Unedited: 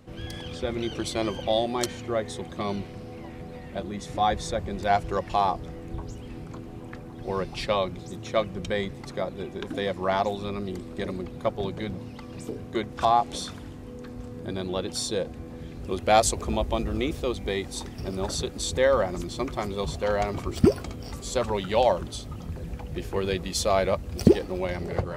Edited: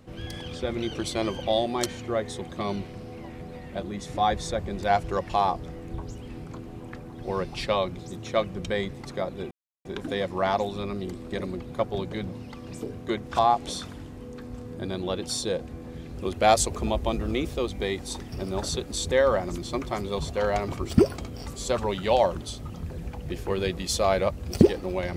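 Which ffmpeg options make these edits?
-filter_complex "[0:a]asplit=2[a][b];[a]atrim=end=9.51,asetpts=PTS-STARTPTS,afade=t=out:st=9.506:d=0.004:c=hsin,apad=pad_dur=0.34[c];[b]atrim=start=9.51,asetpts=PTS-STARTPTS,afade=t=in:d=0.004:c=hsin[d];[c][d]concat=n=2:v=0:a=1"

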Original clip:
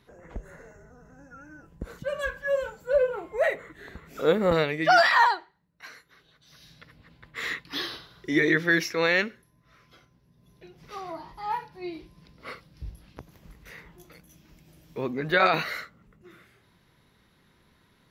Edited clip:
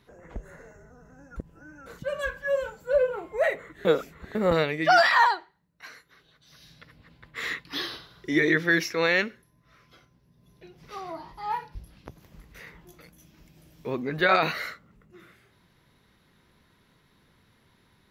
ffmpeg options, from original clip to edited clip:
-filter_complex "[0:a]asplit=6[a][b][c][d][e][f];[a]atrim=end=1.362[g];[b]atrim=start=1.358:end=1.862,asetpts=PTS-STARTPTS,areverse[h];[c]atrim=start=1.858:end=3.852[i];[d]atrim=start=3.848:end=4.352,asetpts=PTS-STARTPTS,areverse[j];[e]atrim=start=4.348:end=11.752[k];[f]atrim=start=12.858[l];[g][h]acrossfade=d=0.004:c1=hsin:c2=hsin[m];[m][i]acrossfade=d=0.004:c1=hsin:c2=hsin[n];[n][j]acrossfade=d=0.004:c1=hsin:c2=hsin[o];[o][k]acrossfade=d=0.004:c1=hsin:c2=hsin[p];[p][l]acrossfade=d=0.004:c1=hsin:c2=hsin"

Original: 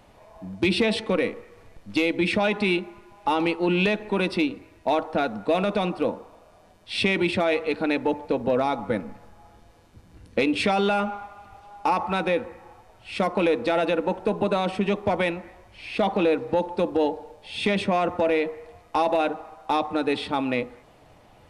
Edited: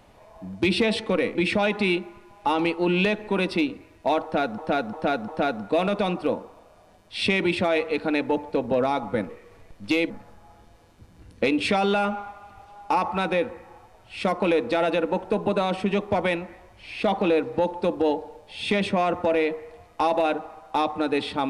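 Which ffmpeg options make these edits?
-filter_complex "[0:a]asplit=7[a][b][c][d][e][f][g];[a]atrim=end=1.352[h];[b]atrim=start=2.158:end=5.392[i];[c]atrim=start=5.038:end=5.392[j];[d]atrim=start=5.038:end=5.392[k];[e]atrim=start=5.038:end=9.052[l];[f]atrim=start=1.348:end=2.162[m];[g]atrim=start=9.048[n];[h][i]acrossfade=d=0.004:c1=hsin:c2=hsin[o];[o][j]acrossfade=d=0.004:c1=hsin:c2=hsin[p];[p][k]acrossfade=d=0.004:c1=hsin:c2=hsin[q];[q][l]acrossfade=d=0.004:c1=hsin:c2=hsin[r];[r][m]acrossfade=d=0.004:c1=hsin:c2=hsin[s];[s][n]acrossfade=d=0.004:c1=hsin:c2=hsin"

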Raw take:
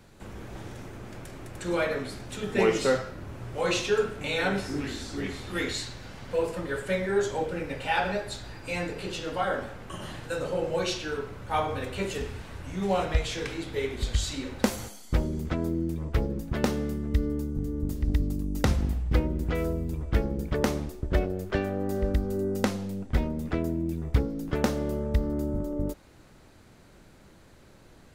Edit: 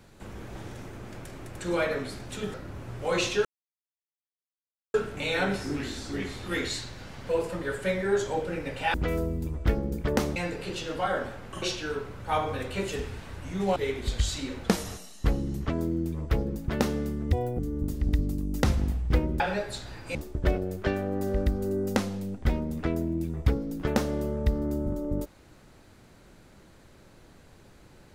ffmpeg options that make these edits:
-filter_complex "[0:a]asplit=13[a][b][c][d][e][f][g][h][i][j][k][l][m];[a]atrim=end=2.542[n];[b]atrim=start=3.068:end=3.98,asetpts=PTS-STARTPTS,afade=t=out:st=0.908:d=0.004:c=hsin,apad=pad_dur=1.49[o];[c]atrim=start=3.98:end=7.982,asetpts=PTS-STARTPTS,afade=t=in:d=0.004:c=hsin[p];[d]atrim=start=19.408:end=20.832[q];[e]atrim=start=8.728:end=9.992[r];[f]atrim=start=10.838:end=12.982[s];[g]atrim=start=13.708:end=14.594[t];[h]atrim=start=14.59:end=15.53,asetpts=PTS-STARTPTS,asetrate=39249,aresample=44100[u];[i]atrim=start=15.526:end=17.164[v];[j]atrim=start=17.16:end=17.6,asetpts=PTS-STARTPTS,asetrate=73647,aresample=44100,atrim=end_sample=11619,asetpts=PTS-STARTPTS[w];[k]atrim=start=17.596:end=19.412[x];[l]atrim=start=7.978:end=8.732[y];[m]atrim=start=20.828[z];[o][p]concat=n=2:v=0:a=1[aa];[n][aa]acrossfade=d=0.004:c1=hsin:c2=hsin[ab];[ab][q]acrossfade=d=0.004:c1=hsin:c2=hsin[ac];[ac][r]acrossfade=d=0.004:c1=hsin:c2=hsin[ad];[ad][s]acrossfade=d=0.004:c1=hsin:c2=hsin[ae];[ae][t]acrossfade=d=0.004:c1=hsin:c2=hsin[af];[af][u]acrossfade=d=0.004:c1=hsin:c2=hsin[ag];[ag][v]acrossfade=d=0.004:c1=hsin:c2=hsin[ah];[ah][w]acrossfade=d=0.004:c1=hsin:c2=hsin[ai];[ai][x]acrossfade=d=0.004:c1=hsin:c2=hsin[aj];[aj][y]acrossfade=d=0.004:c1=hsin:c2=hsin[ak];[ak][z]acrossfade=d=0.004:c1=hsin:c2=hsin"

